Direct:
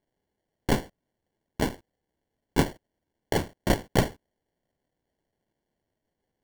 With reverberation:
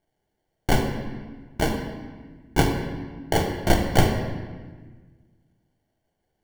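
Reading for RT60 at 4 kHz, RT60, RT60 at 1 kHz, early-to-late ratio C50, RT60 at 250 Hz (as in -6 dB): 1.1 s, 1.5 s, 1.4 s, 5.0 dB, 1.9 s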